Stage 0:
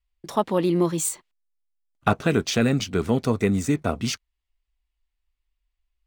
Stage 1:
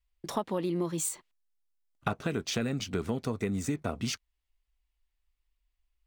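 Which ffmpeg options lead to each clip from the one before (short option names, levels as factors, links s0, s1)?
-af "acompressor=threshold=0.0398:ratio=4,volume=0.891"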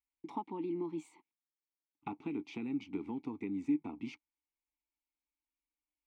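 -filter_complex "[0:a]asplit=3[s0][s1][s2];[s0]bandpass=f=300:t=q:w=8,volume=1[s3];[s1]bandpass=f=870:t=q:w=8,volume=0.501[s4];[s2]bandpass=f=2240:t=q:w=8,volume=0.355[s5];[s3][s4][s5]amix=inputs=3:normalize=0,bass=f=250:g=0,treble=f=4000:g=-3,volume=1.58"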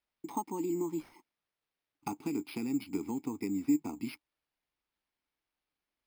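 -af "acrusher=samples=6:mix=1:aa=0.000001,volume=1.58"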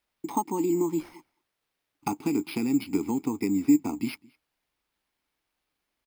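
-filter_complex "[0:a]asplit=2[s0][s1];[s1]adelay=209.9,volume=0.0501,highshelf=f=4000:g=-4.72[s2];[s0][s2]amix=inputs=2:normalize=0,volume=2.51"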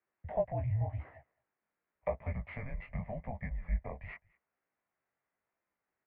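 -af "flanger=delay=15.5:depth=6.8:speed=0.89,highpass=f=390:t=q:w=0.5412,highpass=f=390:t=q:w=1.307,lowpass=f=2400:t=q:w=0.5176,lowpass=f=2400:t=q:w=0.7071,lowpass=f=2400:t=q:w=1.932,afreqshift=-240"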